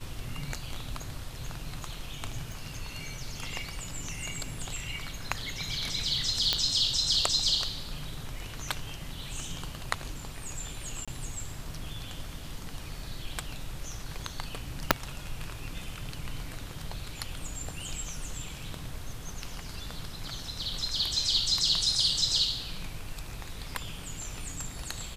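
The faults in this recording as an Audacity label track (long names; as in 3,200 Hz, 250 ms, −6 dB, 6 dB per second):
2.520000	2.520000	click
6.530000	6.530000	click −9 dBFS
11.050000	11.080000	drop-out 26 ms
14.910000	14.910000	click −1 dBFS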